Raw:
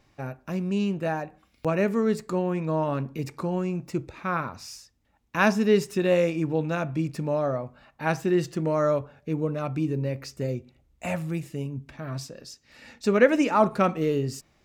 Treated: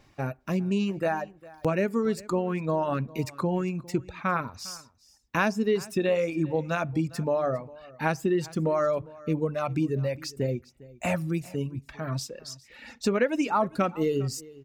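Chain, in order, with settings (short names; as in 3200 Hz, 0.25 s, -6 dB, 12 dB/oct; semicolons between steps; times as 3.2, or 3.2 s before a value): reverb removal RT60 1.7 s; compressor 4:1, threshold -26 dBFS, peak gain reduction 12 dB; echo 0.404 s -21 dB; gain +4 dB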